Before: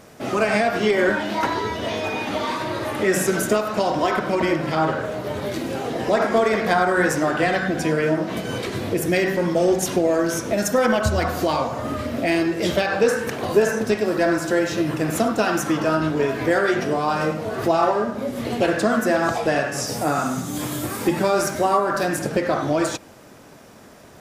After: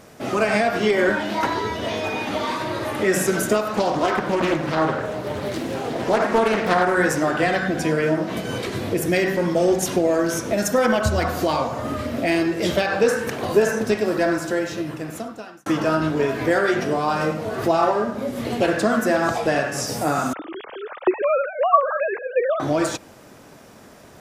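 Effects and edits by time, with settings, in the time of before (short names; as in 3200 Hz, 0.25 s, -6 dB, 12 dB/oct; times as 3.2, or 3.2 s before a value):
3.76–6.95 Doppler distortion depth 0.41 ms
14.1–15.66 fade out
20.33–22.6 sine-wave speech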